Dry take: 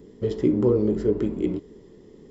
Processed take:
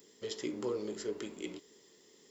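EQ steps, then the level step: differentiator; +9.5 dB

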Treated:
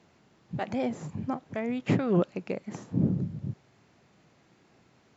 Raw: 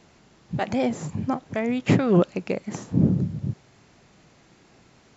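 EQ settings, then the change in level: high-pass 72 Hz; treble shelf 4.9 kHz -7 dB; -6.0 dB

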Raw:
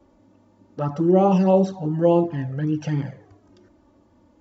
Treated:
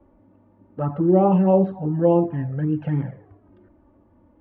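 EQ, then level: Bessel low-pass 1.7 kHz, order 6; bass shelf 71 Hz +6.5 dB; 0.0 dB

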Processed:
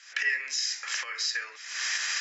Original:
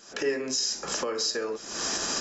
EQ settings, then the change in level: resonant high-pass 2 kHz, resonance Q 4.8; distance through air 56 m; 0.0 dB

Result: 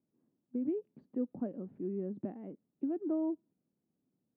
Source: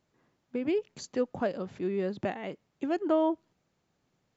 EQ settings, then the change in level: band-pass filter 250 Hz, Q 2.2; distance through air 380 m; 0.0 dB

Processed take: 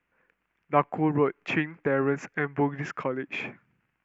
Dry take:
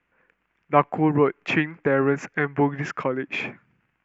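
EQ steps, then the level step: dynamic bell 4.7 kHz, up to -3 dB, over -41 dBFS, Q 1.5; -4.5 dB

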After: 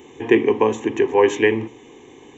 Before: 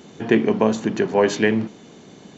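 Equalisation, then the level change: hum notches 60/120 Hz; static phaser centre 940 Hz, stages 8; +4.0 dB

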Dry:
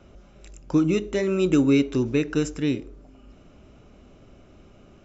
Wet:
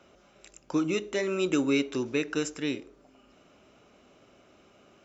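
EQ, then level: high-pass 610 Hz 6 dB/octave; 0.0 dB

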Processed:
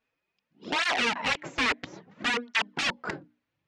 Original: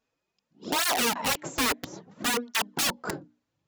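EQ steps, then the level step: low-pass 6.9 kHz 12 dB/octave; distance through air 75 m; peaking EQ 2.2 kHz +8.5 dB 1.3 oct; -3.0 dB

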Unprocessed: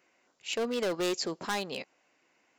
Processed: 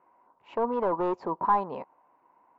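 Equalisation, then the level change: resonant low-pass 970 Hz, resonance Q 9.9; bass shelf 79 Hz +8.5 dB; 0.0 dB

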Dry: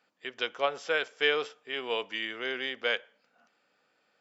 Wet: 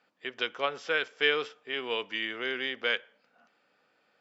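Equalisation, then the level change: dynamic bell 670 Hz, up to -7 dB, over -44 dBFS, Q 1.4; distance through air 79 m; +2.5 dB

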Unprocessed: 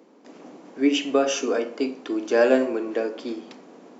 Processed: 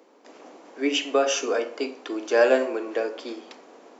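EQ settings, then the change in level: high-pass 430 Hz 12 dB/octave; +1.5 dB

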